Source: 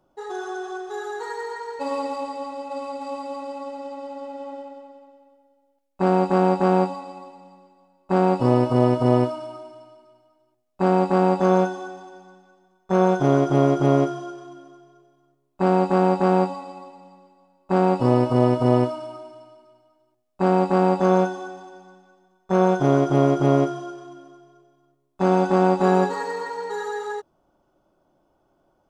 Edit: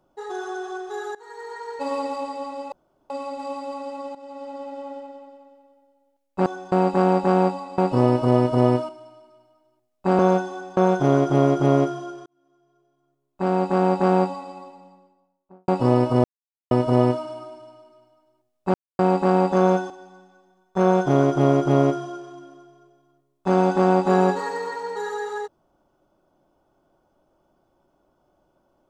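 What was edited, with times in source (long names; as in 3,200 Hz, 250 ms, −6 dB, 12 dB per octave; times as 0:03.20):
0:01.15–0:01.74: fade in, from −22 dB
0:02.72: splice in room tone 0.38 s
0:03.77–0:04.21: fade in equal-power, from −13 dB
0:07.14–0:08.26: remove
0:09.37–0:09.64: remove
0:10.94–0:11.46: remove
0:12.04–0:12.97: remove
0:14.46–0:16.23: fade in
0:16.81–0:17.88: fade out and dull
0:18.44: splice in silence 0.47 s
0:20.47: splice in silence 0.25 s
0:21.38–0:21.64: move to 0:06.08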